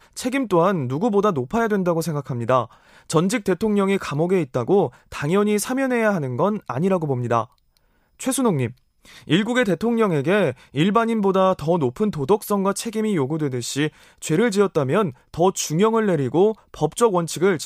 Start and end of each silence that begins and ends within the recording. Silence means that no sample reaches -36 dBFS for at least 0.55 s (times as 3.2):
7.45–8.2